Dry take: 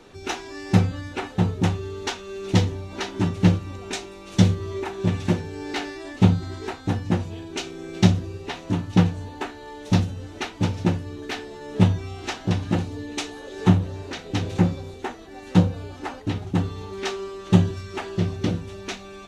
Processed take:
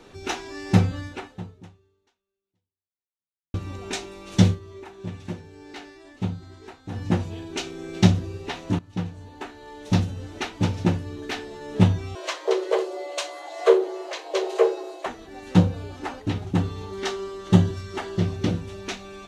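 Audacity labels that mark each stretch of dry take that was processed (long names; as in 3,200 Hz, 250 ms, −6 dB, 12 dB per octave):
1.040000	3.540000	fade out exponential
4.480000	7.030000	duck −11.5 dB, fades 0.12 s
8.790000	10.190000	fade in linear, from −17.5 dB
12.150000	15.060000	frequency shifter +280 Hz
16.860000	18.220000	notch filter 2,500 Hz, Q 8.9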